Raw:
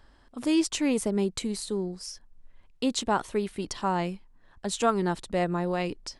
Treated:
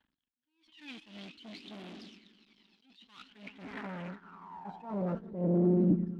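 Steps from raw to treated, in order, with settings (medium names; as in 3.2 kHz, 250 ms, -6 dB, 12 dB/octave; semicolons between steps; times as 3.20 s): distance through air 340 m; on a send: echo with a slow build-up 97 ms, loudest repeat 5, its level -17 dB; on the sum: phaser 0.53 Hz, delay 1.3 ms, feedback 73%; in parallel at -10 dB: fuzz box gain 39 dB, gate -45 dBFS; on the sum: gate -21 dBFS, range -17 dB; compression 2:1, threshold -23 dBFS, peak gain reduction 7 dB; resonant low shelf 360 Hz +11 dB, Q 1.5; saturation -10 dBFS, distortion -15 dB; band-pass sweep 3.3 kHz -> 280 Hz, 3.21–5.92 s; attacks held to a fixed rise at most 120 dB/s; trim -2.5 dB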